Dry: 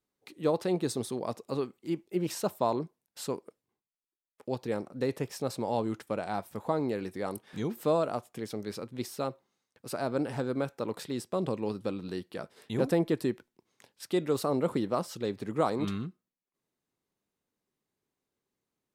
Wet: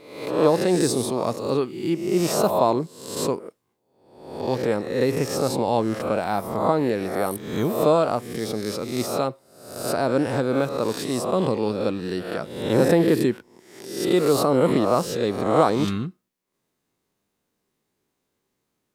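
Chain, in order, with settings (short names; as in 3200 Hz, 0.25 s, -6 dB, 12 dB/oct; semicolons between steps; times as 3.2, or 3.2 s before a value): spectral swells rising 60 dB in 0.78 s; gain +7.5 dB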